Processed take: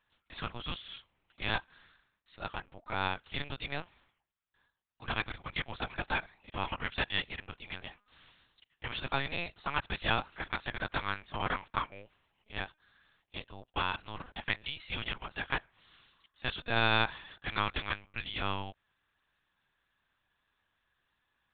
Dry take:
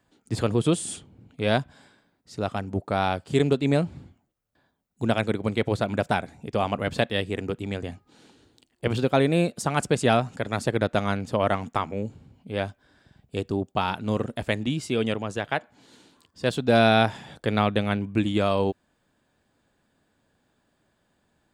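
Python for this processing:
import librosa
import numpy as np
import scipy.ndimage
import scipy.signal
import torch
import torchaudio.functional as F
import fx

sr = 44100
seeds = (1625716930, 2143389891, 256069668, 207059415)

y = scipy.signal.sosfilt(scipy.signal.butter(2, 1200.0, 'highpass', fs=sr, output='sos'), x)
y = fx.over_compress(y, sr, threshold_db=-34.0, ratio=-1.0, at=(7.8, 9.04), fade=0.02)
y = fx.lpc_vocoder(y, sr, seeds[0], excitation='pitch_kept', order=8)
y = y * 10.0 ** (-1.5 / 20.0)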